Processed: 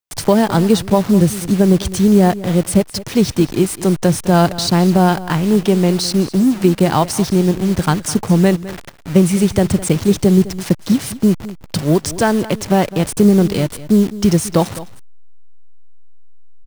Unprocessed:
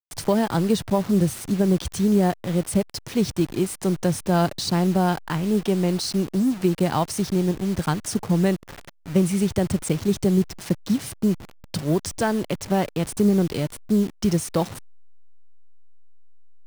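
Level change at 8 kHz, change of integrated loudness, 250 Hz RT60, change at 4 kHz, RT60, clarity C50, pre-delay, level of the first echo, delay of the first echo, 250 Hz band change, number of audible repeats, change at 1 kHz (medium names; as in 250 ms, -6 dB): +8.0 dB, +8.0 dB, no reverb, +8.0 dB, no reverb, no reverb, no reverb, -16.5 dB, 208 ms, +8.0 dB, 1, +8.0 dB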